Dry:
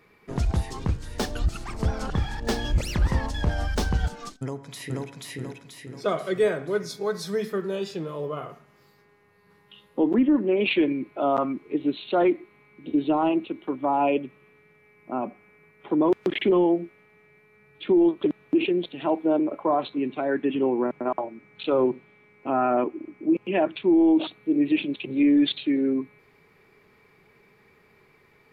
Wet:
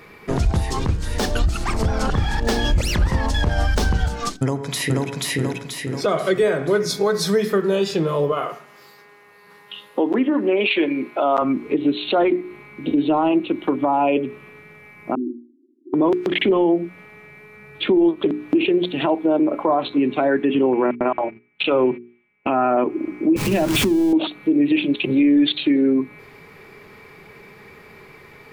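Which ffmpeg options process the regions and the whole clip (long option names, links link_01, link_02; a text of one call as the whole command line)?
ffmpeg -i in.wav -filter_complex "[0:a]asettb=1/sr,asplit=3[link_01][link_02][link_03];[link_01]atrim=end=8.324[link_04];[link_02]atrim=start=8.32:end=11.42,asetpts=PTS-STARTPTS,afade=type=in:duration=0.004:curve=qsin,afade=type=out:start_time=3.096:duration=0.004:curve=qsin,highpass=frequency=210:poles=1,lowshelf=frequency=320:gain=-9.5[link_05];[link_03]atrim=start=11.416[link_06];[link_04][link_05]acrossfade=duration=0.004:curve1=hsin:curve2=qsin[link_07];[link_07][link_06]acrossfade=duration=0.004:curve1=qsin:curve2=hsin,asettb=1/sr,asplit=3[link_08][link_09][link_10];[link_08]atrim=end=15.154[link_11];[link_09]atrim=start=15.15:end=15.94,asetpts=PTS-STARTPTS,afade=type=in:duration=0.004:curve=qsin,afade=type=out:start_time=0.786:duration=0.004:curve=qsin,asoftclip=type=hard:threshold=-26.5dB,asuperpass=centerf=300:order=20:qfactor=2.1[link_12];[link_10]atrim=start=15.936[link_13];[link_11][link_12]acrossfade=duration=0.004:curve1=hsin:curve2=qsin[link_14];[link_14][link_13]acrossfade=duration=0.004:curve1=qsin:curve2=hsin,asettb=1/sr,asplit=3[link_15][link_16][link_17];[link_15]atrim=end=20.734[link_18];[link_16]atrim=start=20.73:end=22.55,asetpts=PTS-STARTPTS,afade=type=in:duration=0.004:curve=qsin,afade=type=out:start_time=1.816:duration=0.004:curve=qsin,lowpass=frequency=2700:width_type=q:width=2.8,agate=range=-29dB:threshold=-39dB:ratio=16:release=100:detection=peak[link_19];[link_17]atrim=start=22.546[link_20];[link_18][link_19]acrossfade=duration=0.004:curve1=hsin:curve2=qsin[link_21];[link_21][link_20]acrossfade=duration=0.004:curve1=qsin:curve2=hsin,asettb=1/sr,asplit=3[link_22][link_23][link_24];[link_22]atrim=end=23.364[link_25];[link_23]atrim=start=23.36:end=24.13,asetpts=PTS-STARTPTS,afade=type=in:duration=0.004:curve=qsin,afade=type=out:start_time=0.766:duration=0.004:curve=qsin,aeval=exprs='val(0)+0.5*0.0398*sgn(val(0))':channel_layout=same,bass=frequency=250:gain=13,treble=frequency=4000:gain=5,acompressor=threshold=-25dB:ratio=6:attack=3.2:release=140:knee=1:detection=peak[link_26];[link_24]atrim=start=24.126[link_27];[link_25][link_26]acrossfade=duration=0.004:curve1=hsin:curve2=qsin[link_28];[link_28][link_27]acrossfade=duration=0.004:curve1=qsin:curve2=hsin,bandreject=frequency=60:width_type=h:width=6,bandreject=frequency=120:width_type=h:width=6,bandreject=frequency=180:width_type=h:width=6,bandreject=frequency=240:width_type=h:width=6,bandreject=frequency=300:width_type=h:width=6,bandreject=frequency=360:width_type=h:width=6,bandreject=frequency=420:width_type=h:width=6,acompressor=threshold=-32dB:ratio=2.5,alimiter=level_in=23dB:limit=-1dB:release=50:level=0:latency=1,volume=-8.5dB" out.wav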